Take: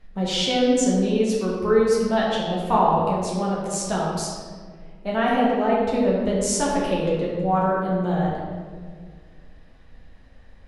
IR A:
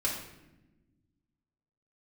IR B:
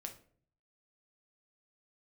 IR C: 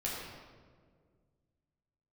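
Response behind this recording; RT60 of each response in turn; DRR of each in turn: C; not exponential, 0.50 s, 1.8 s; -5.0, 3.5, -6.0 dB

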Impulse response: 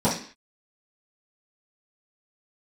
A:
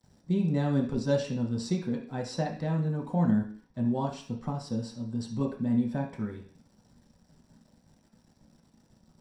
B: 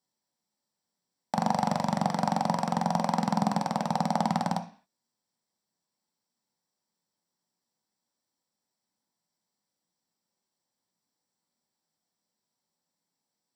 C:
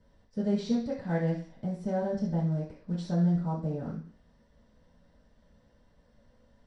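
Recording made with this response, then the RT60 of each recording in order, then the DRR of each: C; 0.45, 0.45, 0.45 s; -2.5, 4.0, -12.5 dB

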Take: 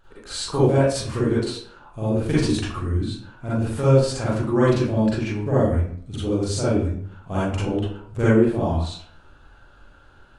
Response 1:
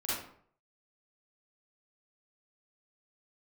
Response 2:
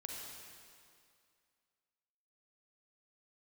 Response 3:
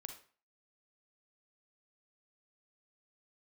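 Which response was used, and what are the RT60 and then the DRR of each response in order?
1; 0.60, 2.3, 0.40 s; -10.0, -1.5, 5.5 dB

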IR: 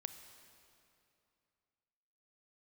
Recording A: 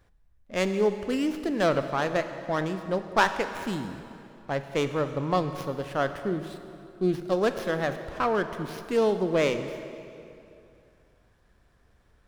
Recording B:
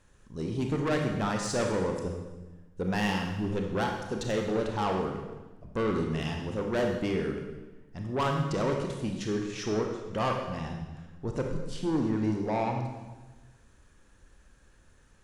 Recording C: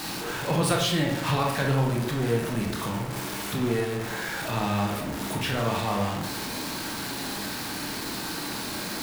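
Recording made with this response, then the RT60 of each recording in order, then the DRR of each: A; 2.7, 1.1, 0.70 s; 8.5, 2.0, -0.5 dB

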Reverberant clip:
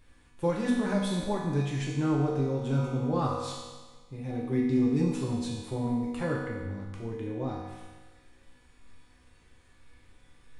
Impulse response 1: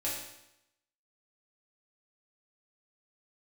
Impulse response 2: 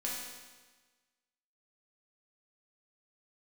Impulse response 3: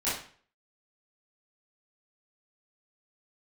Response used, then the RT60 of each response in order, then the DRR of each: 2; 0.85, 1.3, 0.45 s; -8.0, -5.0, -12.5 dB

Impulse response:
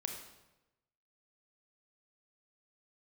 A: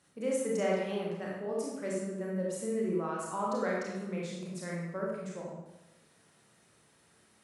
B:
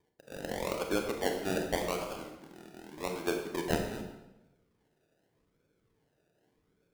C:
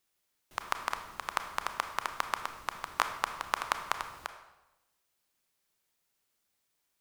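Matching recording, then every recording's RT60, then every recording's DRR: B; 1.0, 1.0, 1.0 s; -4.0, 3.0, 7.0 dB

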